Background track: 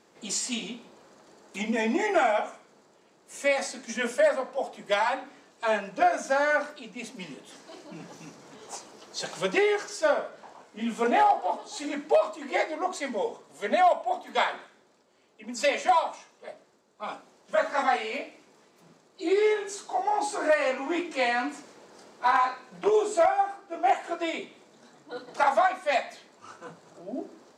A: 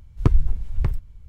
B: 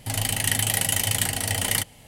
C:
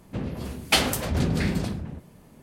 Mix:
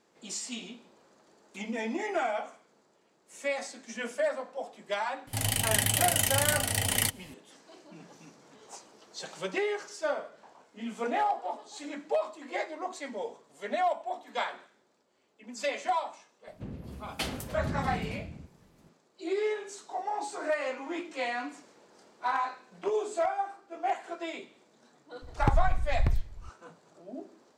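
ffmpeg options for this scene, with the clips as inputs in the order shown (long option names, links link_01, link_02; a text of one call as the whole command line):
ffmpeg -i bed.wav -i cue0.wav -i cue1.wav -i cue2.wav -filter_complex "[0:a]volume=-7dB[link_01];[3:a]lowshelf=frequency=480:gain=5.5[link_02];[1:a]acompressor=threshold=-17dB:ratio=6:attack=3.2:release=140:knee=1:detection=peak[link_03];[2:a]atrim=end=2.07,asetpts=PTS-STARTPTS,volume=-3.5dB,afade=type=in:duration=0.004:curve=hsin,afade=type=out:start_time=2.066:duration=0.004:curve=hsin,adelay=5270[link_04];[link_02]atrim=end=2.42,asetpts=PTS-STARTPTS,volume=-14.5dB,afade=type=in:duration=0.004:curve=hsin,afade=type=out:start_time=2.416:duration=0.004:curve=hsin,adelay=16470[link_05];[link_03]atrim=end=1.28,asetpts=PTS-STARTPTS,volume=-1.5dB,afade=type=in:duration=0.004:curve=hsin,afade=type=out:start_time=1.276:duration=0.004:curve=hsin,adelay=25220[link_06];[link_01][link_04][link_05][link_06]amix=inputs=4:normalize=0" out.wav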